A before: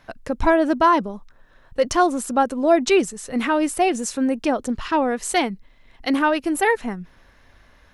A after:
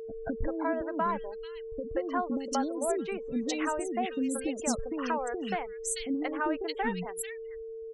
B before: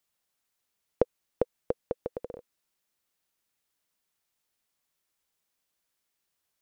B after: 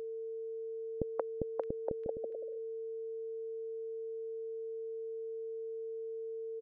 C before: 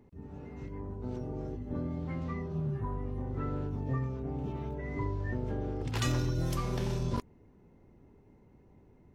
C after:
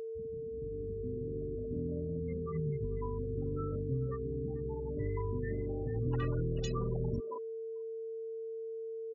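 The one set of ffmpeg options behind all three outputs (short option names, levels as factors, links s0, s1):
-filter_complex "[0:a]afftfilt=real='re*gte(hypot(re,im),0.0355)':imag='im*gte(hypot(re,im),0.0355)':win_size=1024:overlap=0.75,acompressor=threshold=0.0562:ratio=5,acrossover=split=430|2400[s0][s1][s2];[s1]adelay=180[s3];[s2]adelay=620[s4];[s0][s3][s4]amix=inputs=3:normalize=0,aeval=exprs='val(0)+0.0158*sin(2*PI*450*n/s)':c=same,volume=0.794"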